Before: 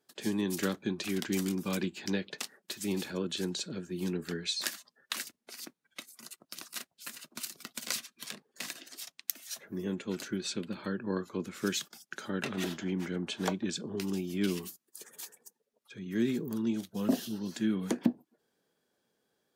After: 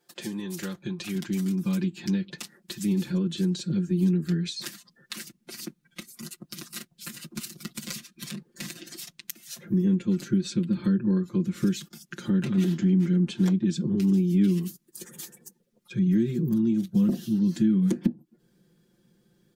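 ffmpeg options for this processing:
ffmpeg -i in.wav -filter_complex "[0:a]asettb=1/sr,asplit=3[link_01][link_02][link_03];[link_01]atrim=end=0.394[link_04];[link_02]atrim=start=0.39:end=1.15,asetpts=PTS-STARTPTS,afade=type=in:duration=0.004:curve=qsin,afade=type=out:start_time=0.756:duration=0.004:curve=qsin,equalizer=frequency=240:width=2.1:gain=-7[link_05];[link_03]atrim=start=1.146[link_06];[link_04][link_05]acrossfade=duration=0.004:curve1=hsin:curve2=qsin[link_07];[link_07][link_06]acrossfade=duration=0.004:curve1=qsin:curve2=hsin,acompressor=threshold=-44dB:ratio=2.5,aecho=1:1:5.7:0.97,asubboost=boost=9.5:cutoff=220,volume=4dB" out.wav

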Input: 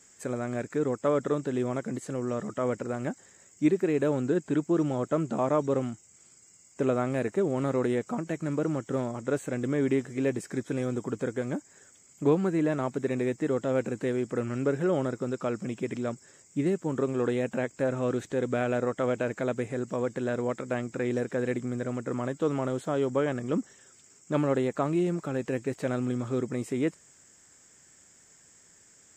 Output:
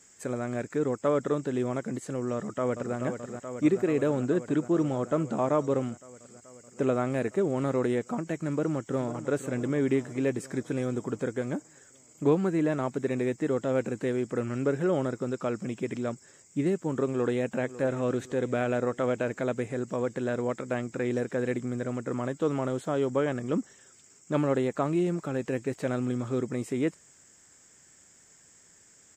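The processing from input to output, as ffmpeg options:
ffmpeg -i in.wav -filter_complex "[0:a]asplit=2[link_01][link_02];[link_02]afade=type=in:start_time=2.33:duration=0.01,afade=type=out:start_time=2.96:duration=0.01,aecho=0:1:430|860|1290|1720|2150|2580|3010|3440|3870|4300|4730|5160:0.421697|0.337357|0.269886|0.215909|0.172727|0.138182|0.110545|0.0884362|0.0707489|0.0565991|0.0452793|0.0362235[link_03];[link_01][link_03]amix=inputs=2:normalize=0,asplit=2[link_04][link_05];[link_05]afade=type=in:start_time=8.5:duration=0.01,afade=type=out:start_time=9.19:duration=0.01,aecho=0:1:500|1000|1500|2000|2500|3000|3500:0.237137|0.142282|0.0853695|0.0512217|0.030733|0.0184398|0.0110639[link_06];[link_04][link_06]amix=inputs=2:normalize=0,asplit=2[link_07][link_08];[link_08]afade=type=in:start_time=17.05:duration=0.01,afade=type=out:start_time=17.6:duration=0.01,aecho=0:1:550|1100|1650|2200|2750:0.16788|0.0839402|0.0419701|0.0209851|0.0104925[link_09];[link_07][link_09]amix=inputs=2:normalize=0" out.wav

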